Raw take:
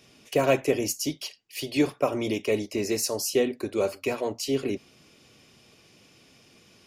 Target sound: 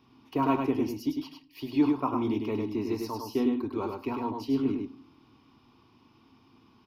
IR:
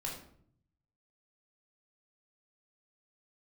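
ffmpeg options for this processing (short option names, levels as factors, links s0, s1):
-filter_complex "[0:a]firequalizer=gain_entry='entry(120,0);entry(180,-7);entry(250,6);entry(560,-16);entry(930,9);entry(1700,-11);entry(3400,-9);entry(5200,-13);entry(7400,-30);entry(14000,-11)':delay=0.05:min_phase=1,aecho=1:1:102:0.596,asplit=2[s0][s1];[1:a]atrim=start_sample=2205,adelay=9[s2];[s1][s2]afir=irnorm=-1:irlink=0,volume=0.126[s3];[s0][s3]amix=inputs=2:normalize=0,volume=0.794"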